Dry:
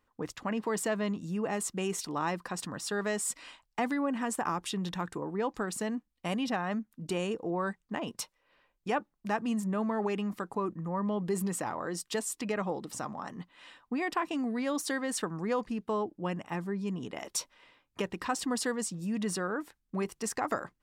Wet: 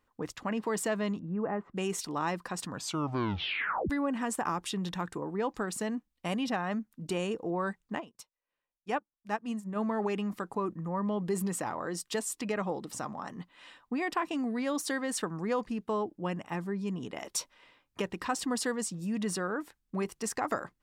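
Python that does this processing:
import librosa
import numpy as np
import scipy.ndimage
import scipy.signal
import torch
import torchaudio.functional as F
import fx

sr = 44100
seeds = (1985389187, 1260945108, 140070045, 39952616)

y = fx.lowpass(x, sr, hz=1700.0, slope=24, at=(1.19, 1.76))
y = fx.upward_expand(y, sr, threshold_db=-41.0, expansion=2.5, at=(8.0, 9.75), fade=0.02)
y = fx.edit(y, sr, fx.tape_stop(start_s=2.69, length_s=1.21), tone=tone)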